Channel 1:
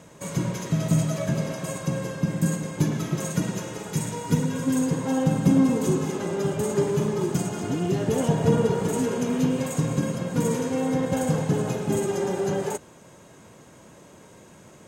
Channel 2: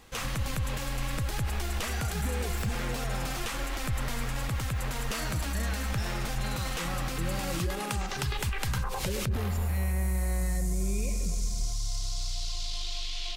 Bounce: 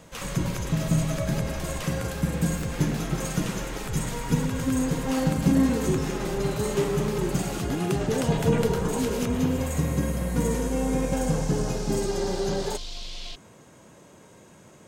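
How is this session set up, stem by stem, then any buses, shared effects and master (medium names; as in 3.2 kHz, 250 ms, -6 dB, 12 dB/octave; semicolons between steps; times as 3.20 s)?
-2.0 dB, 0.00 s, no send, none
-2.5 dB, 0.00 s, no send, none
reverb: none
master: none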